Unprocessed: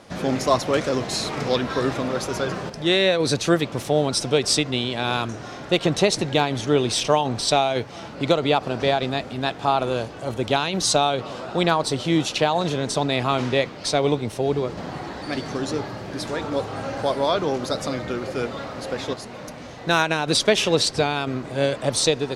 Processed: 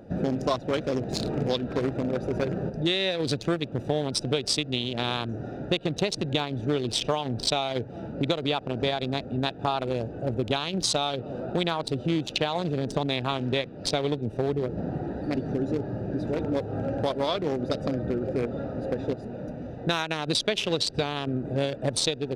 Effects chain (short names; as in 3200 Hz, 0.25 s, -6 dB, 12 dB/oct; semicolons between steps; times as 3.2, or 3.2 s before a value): Wiener smoothing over 41 samples; dynamic EQ 3400 Hz, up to +6 dB, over -39 dBFS, Q 1.4; compressor 5:1, threshold -28 dBFS, peak gain reduction 14.5 dB; gain +4.5 dB